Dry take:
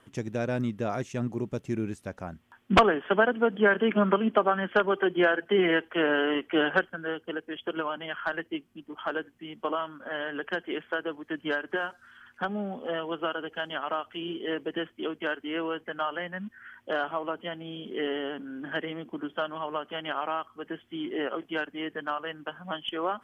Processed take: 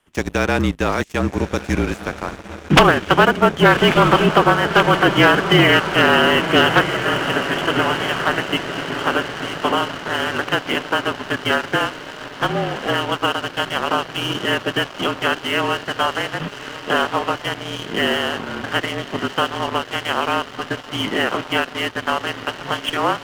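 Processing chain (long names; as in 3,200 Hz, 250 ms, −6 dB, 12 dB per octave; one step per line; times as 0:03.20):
ceiling on every frequency bin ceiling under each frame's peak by 14 dB
feedback delay with all-pass diffusion 1,243 ms, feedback 66%, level −10 dB
frequency shifter −40 Hz
leveller curve on the samples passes 3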